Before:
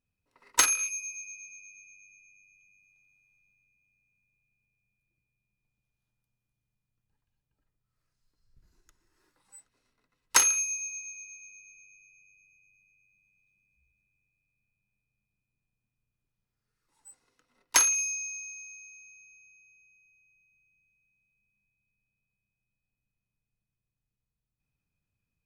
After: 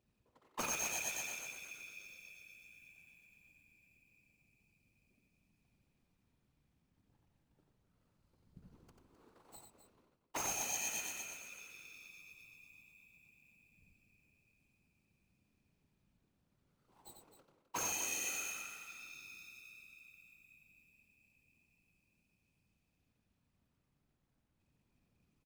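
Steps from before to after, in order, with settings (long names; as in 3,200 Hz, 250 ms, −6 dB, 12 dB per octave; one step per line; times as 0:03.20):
running median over 25 samples
high-pass filter 100 Hz 6 dB per octave
leveller curve on the samples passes 1
reversed playback
downward compressor 16 to 1, threshold −49 dBFS, peak gain reduction 25 dB
reversed playback
random phases in short frames
on a send: loudspeakers that aren't time-aligned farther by 31 metres −5 dB, 89 metres −11 dB
on the sum: level +12 dB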